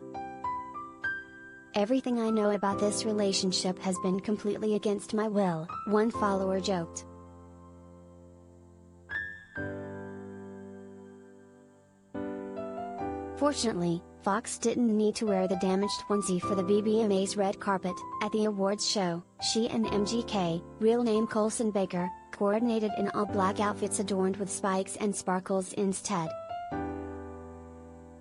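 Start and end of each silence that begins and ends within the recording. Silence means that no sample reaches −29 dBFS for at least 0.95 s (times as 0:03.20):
0:06.98–0:09.11
0:09.69–0:12.16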